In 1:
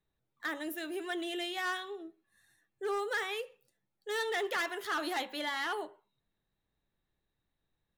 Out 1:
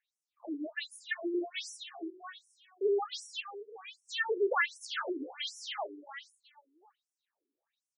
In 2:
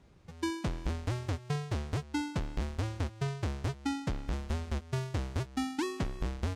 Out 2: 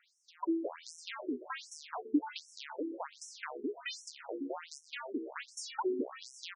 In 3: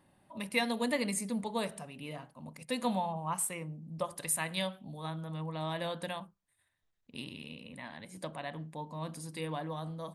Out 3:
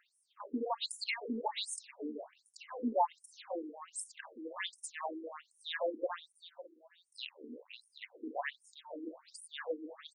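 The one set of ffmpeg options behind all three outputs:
-filter_complex "[0:a]asplit=2[a][b];[b]aecho=0:1:552|1104:0.224|0.047[c];[a][c]amix=inputs=2:normalize=0,afftfilt=real='re*between(b*sr/1024,310*pow(7700/310,0.5+0.5*sin(2*PI*1.3*pts/sr))/1.41,310*pow(7700/310,0.5+0.5*sin(2*PI*1.3*pts/sr))*1.41)':imag='im*between(b*sr/1024,310*pow(7700/310,0.5+0.5*sin(2*PI*1.3*pts/sr))/1.41,310*pow(7700/310,0.5+0.5*sin(2*PI*1.3*pts/sr))*1.41)':win_size=1024:overlap=0.75,volume=7dB"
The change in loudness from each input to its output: 0.0, -4.0, -3.5 LU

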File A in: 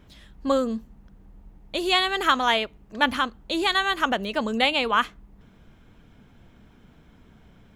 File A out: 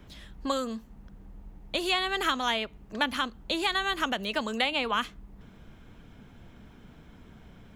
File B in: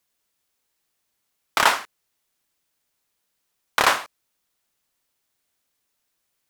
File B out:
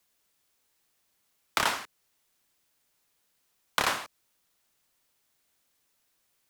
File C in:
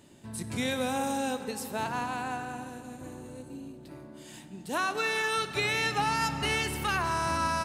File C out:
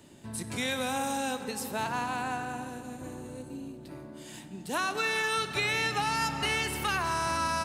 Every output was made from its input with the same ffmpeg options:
-filter_complex "[0:a]acrossover=split=280|700|2400[a][b][c][d];[a]acompressor=threshold=-41dB:ratio=4[e];[b]acompressor=threshold=-41dB:ratio=4[f];[c]acompressor=threshold=-32dB:ratio=4[g];[d]acompressor=threshold=-33dB:ratio=4[h];[e][f][g][h]amix=inputs=4:normalize=0,volume=2dB"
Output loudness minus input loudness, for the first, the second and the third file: -5.5, -8.5, -0.5 LU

